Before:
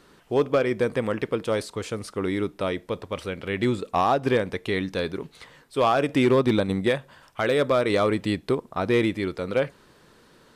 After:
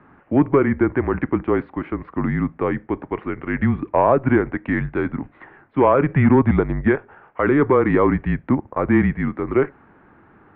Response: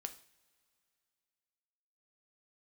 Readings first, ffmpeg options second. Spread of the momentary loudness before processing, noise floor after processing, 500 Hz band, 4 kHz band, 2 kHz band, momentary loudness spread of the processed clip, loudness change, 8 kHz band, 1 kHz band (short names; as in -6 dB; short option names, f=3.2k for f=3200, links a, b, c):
11 LU, -52 dBFS, +3.0 dB, under -15 dB, +4.0 dB, 11 LU, +5.0 dB, under -35 dB, +4.0 dB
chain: -af "highpass=f=220:t=q:w=0.5412,highpass=f=220:t=q:w=1.307,lowpass=f=2.2k:t=q:w=0.5176,lowpass=f=2.2k:t=q:w=0.7071,lowpass=f=2.2k:t=q:w=1.932,afreqshift=-140,volume=6dB"